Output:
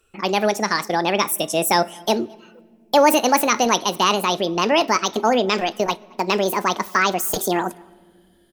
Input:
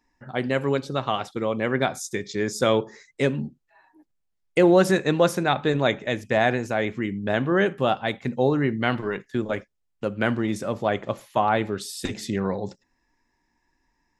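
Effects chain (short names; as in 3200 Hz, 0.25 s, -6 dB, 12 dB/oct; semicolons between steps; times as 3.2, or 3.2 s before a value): speed glide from 150% -> 183%; bell 5500 Hz +3.5 dB 0.37 oct; in parallel at -0.5 dB: limiter -16 dBFS, peak gain reduction 10.5 dB; on the sum: high shelf 8800 Hz +9.5 dB; outdoor echo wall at 38 m, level -28 dB; on a send at -23.5 dB: reverb, pre-delay 3 ms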